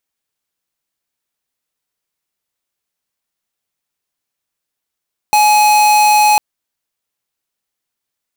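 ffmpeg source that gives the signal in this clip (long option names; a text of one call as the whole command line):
ffmpeg -f lavfi -i "aevalsrc='0.335*(2*lt(mod(842*t,1),0.5)-1)':duration=1.05:sample_rate=44100" out.wav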